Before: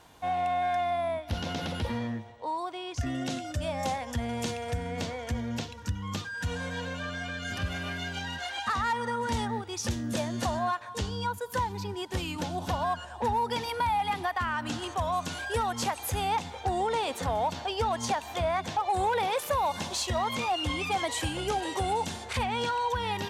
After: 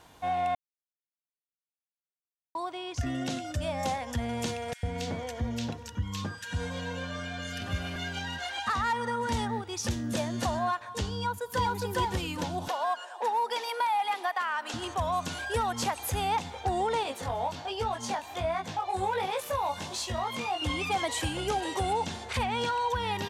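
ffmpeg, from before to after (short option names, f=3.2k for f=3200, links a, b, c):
-filter_complex "[0:a]asettb=1/sr,asplit=3[a][b][c];[a]atrim=end=4.734[d];[b]atrim=start=4.73:end=7.96,asetpts=PTS-STARTPTS,afade=t=in:d=0.004:c=qsin,afade=t=out:st=3.226:d=0.004:c=qsin,acrossover=split=1700[e][f];[e]adelay=100[g];[g][f]amix=inputs=2:normalize=0,atrim=end_sample=142443[h];[c]atrim=start=7.956[i];[d][h]acrossfade=d=0.004:c1=hsin:c2=qsin[j];[j][i]acrossfade=d=0.004:c1=qsin:c2=hsin,asplit=2[k][l];[l]afade=t=in:st=11.15:d=0.01,afade=t=out:st=11.73:d=0.01,aecho=0:1:410|820|1230:1|0.2|0.04[m];[k][m]amix=inputs=2:normalize=0,asettb=1/sr,asplit=3[n][o][p];[n]atrim=end=12.684[q];[o]atrim=start=12.68:end=14.74,asetpts=PTS-STARTPTS,afade=t=in:d=0.004:c=qsin,afade=t=out:st=2.056:d=0.004:c=qsin,highpass=f=410:w=0.5412,highpass=f=410:w=1.3066[r];[p]atrim=start=14.736[s];[q][r]acrossfade=d=0.004:c1=hsin:c2=qsin[t];[t][s]acrossfade=d=0.004:c1=qsin:c2=hsin,asettb=1/sr,asplit=3[u][v][w];[u]atrim=end=17.034[x];[v]atrim=start=17.03:end=20.62,asetpts=PTS-STARTPTS,afade=t=in:d=0.004:c=qsin,afade=t=out:st=3.586:d=0.004:c=qsin,flanger=delay=18:depth=3.1:speed=1.3[y];[w]atrim=start=20.616[z];[x][y]acrossfade=d=0.004:c1=hsin:c2=qsin[aa];[aa][z]acrossfade=d=0.004:c1=qsin:c2=hsin,asettb=1/sr,asplit=3[ab][ac][ad];[ab]atrim=end=21.934[ae];[ac]atrim=start=21.93:end=22.33,asetpts=PTS-STARTPTS,afade=t=in:d=0.004:c=qsin,afade=t=out:st=0.396:d=0.004:c=qsin,acrossover=split=7000[af][ag];[ag]acompressor=threshold=-58dB:ratio=4:attack=1:release=60[ah];[af][ah]amix=inputs=2:normalize=0[ai];[ad]atrim=start=22.326[aj];[ae][ai]acrossfade=d=0.004:c1=hsin:c2=qsin[ak];[ak][aj]acrossfade=d=0.004:c1=qsin:c2=hsin,asplit=3[al][am][an];[al]atrim=end=0.55,asetpts=PTS-STARTPTS,afade=t=out:st=0.546:d=0.004:c=hsin[ao];[am]atrim=start=0.55:end=2.55,asetpts=PTS-STARTPTS,volume=0[ap];[an]atrim=start=2.55,asetpts=PTS-STARTPTS,afade=t=in:d=0.004:c=hsin[aq];[ao][ap][aq]concat=n=3:v=0:a=1"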